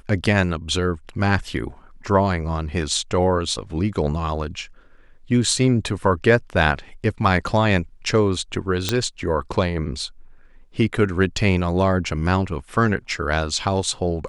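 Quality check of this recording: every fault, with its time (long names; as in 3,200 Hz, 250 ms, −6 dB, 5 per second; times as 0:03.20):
0:08.89: click −4 dBFS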